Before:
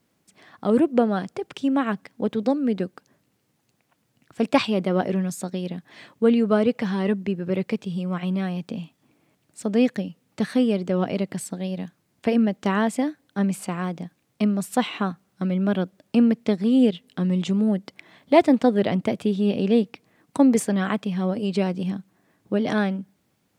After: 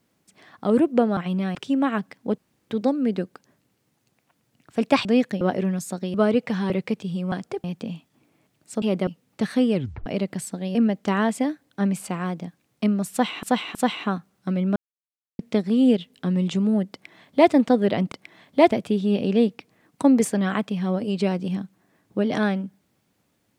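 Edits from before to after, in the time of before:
1.17–1.49 s: swap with 8.14–8.52 s
2.32 s: insert room tone 0.32 s
4.67–4.92 s: swap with 9.70–10.06 s
5.65–6.46 s: delete
7.02–7.52 s: delete
10.73 s: tape stop 0.32 s
11.74–12.33 s: delete
14.69–15.01 s: loop, 3 plays
15.70–16.33 s: mute
17.86–18.45 s: copy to 19.06 s

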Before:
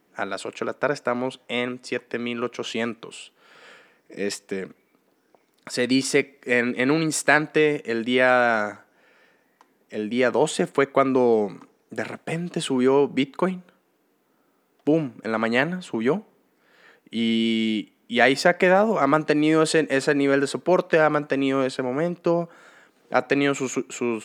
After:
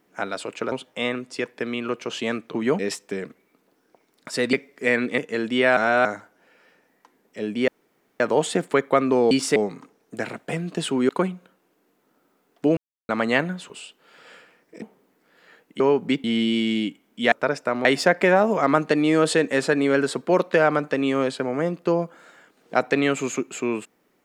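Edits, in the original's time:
0.72–1.25 s: move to 18.24 s
3.07–4.19 s: swap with 15.93–16.18 s
5.93–6.18 s: move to 11.35 s
6.83–7.74 s: delete
8.33–8.61 s: reverse
10.24 s: insert room tone 0.52 s
12.88–13.32 s: move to 17.16 s
15.00–15.32 s: mute

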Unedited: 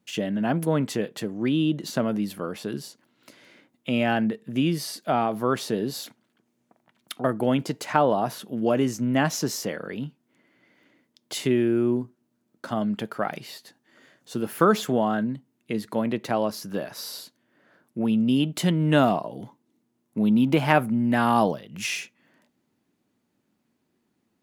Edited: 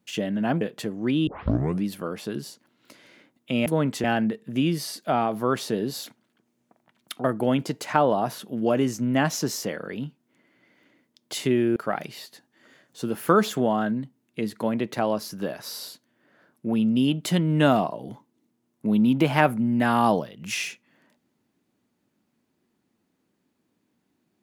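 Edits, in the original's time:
0.61–0.99 s: move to 4.04 s
1.65 s: tape start 0.57 s
11.76–13.08 s: delete

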